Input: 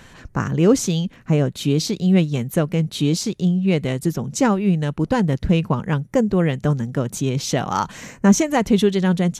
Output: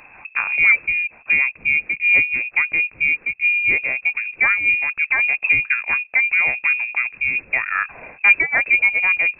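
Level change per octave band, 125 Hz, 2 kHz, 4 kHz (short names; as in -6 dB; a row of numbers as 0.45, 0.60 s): under -25 dB, +19.0 dB, n/a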